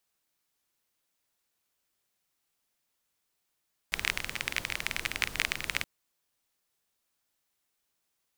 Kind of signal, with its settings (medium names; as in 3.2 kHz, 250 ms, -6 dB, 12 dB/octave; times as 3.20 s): rain from filtered ticks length 1.92 s, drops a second 23, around 2.2 kHz, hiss -9 dB